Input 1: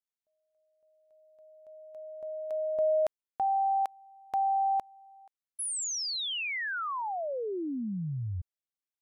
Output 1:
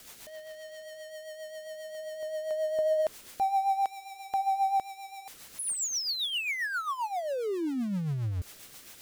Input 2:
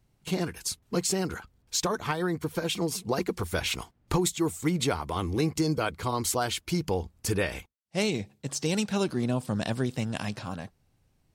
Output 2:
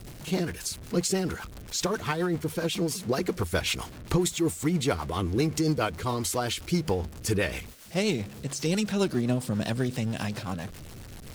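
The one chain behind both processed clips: jump at every zero crossing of -37.5 dBFS; rotary cabinet horn 7.5 Hz; trim +2 dB

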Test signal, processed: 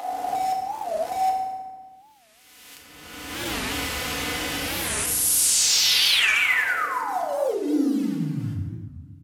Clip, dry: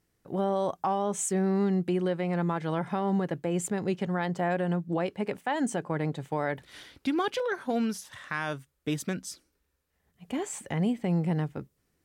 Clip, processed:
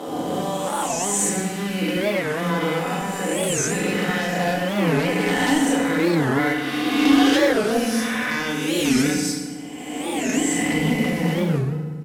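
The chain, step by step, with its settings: reverse spectral sustain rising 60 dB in 1.78 s; high-pass 83 Hz 12 dB/octave; peaking EQ 2.6 kHz +7.5 dB 1.2 oct; comb 4 ms, depth 54%; dynamic bell 960 Hz, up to -5 dB, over -36 dBFS, Q 0.89; in parallel at -1.5 dB: compression 10:1, threshold -33 dBFS; on the sum: wavefolder -16.5 dBFS; short-mantissa float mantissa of 2-bit; bands offset in time highs, lows 80 ms, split 210 Hz; FDN reverb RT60 1.5 s, low-frequency decay 1.5×, high-frequency decay 0.65×, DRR -1 dB; resampled via 32 kHz; warped record 45 rpm, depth 250 cents

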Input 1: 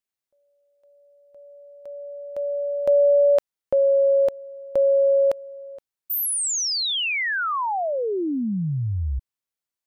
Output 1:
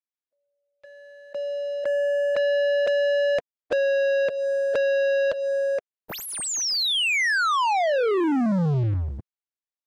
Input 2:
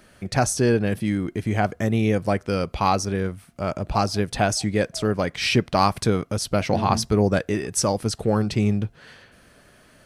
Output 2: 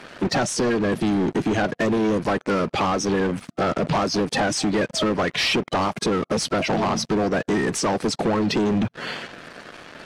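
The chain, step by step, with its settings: coarse spectral quantiser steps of 30 dB; high-pass 140 Hz 24 dB/octave; compression 12:1, threshold -29 dBFS; waveshaping leveller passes 5; distance through air 70 m

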